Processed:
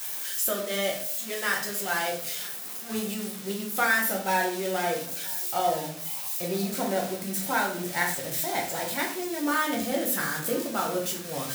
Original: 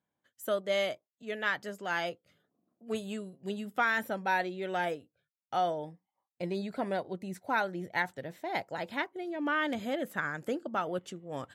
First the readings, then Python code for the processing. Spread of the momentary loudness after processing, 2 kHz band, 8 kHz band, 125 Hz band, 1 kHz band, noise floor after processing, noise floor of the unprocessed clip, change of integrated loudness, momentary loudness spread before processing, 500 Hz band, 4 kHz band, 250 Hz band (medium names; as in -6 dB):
6 LU, +4.5 dB, +23.0 dB, +5.5 dB, +4.0 dB, -37 dBFS, under -85 dBFS, +6.0 dB, 10 LU, +4.0 dB, +8.5 dB, +5.5 dB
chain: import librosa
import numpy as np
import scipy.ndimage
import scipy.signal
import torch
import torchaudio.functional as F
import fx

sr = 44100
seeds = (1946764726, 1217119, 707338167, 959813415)

p1 = x + 0.5 * 10.0 ** (-25.5 / 20.0) * np.diff(np.sign(x), prepend=np.sign(x[:1]))
p2 = p1 + fx.echo_single(p1, sr, ms=973, db=-22.0, dry=0)
y = fx.room_shoebox(p2, sr, seeds[0], volume_m3=65.0, walls='mixed', distance_m=0.88)